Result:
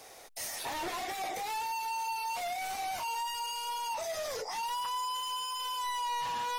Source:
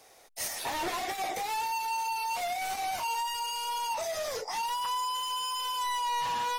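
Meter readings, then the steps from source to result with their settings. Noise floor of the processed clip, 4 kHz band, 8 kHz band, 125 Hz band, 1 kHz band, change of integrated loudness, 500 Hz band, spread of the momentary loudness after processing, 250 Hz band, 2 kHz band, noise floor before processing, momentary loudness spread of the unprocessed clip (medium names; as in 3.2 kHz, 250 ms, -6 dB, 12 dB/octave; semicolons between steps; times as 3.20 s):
-51 dBFS, -3.0 dB, -3.0 dB, no reading, -3.0 dB, -3.0 dB, -3.0 dB, 3 LU, -3.5 dB, -3.0 dB, -57 dBFS, 3 LU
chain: peak limiter -35.5 dBFS, peak gain reduction 10.5 dB; trim +5.5 dB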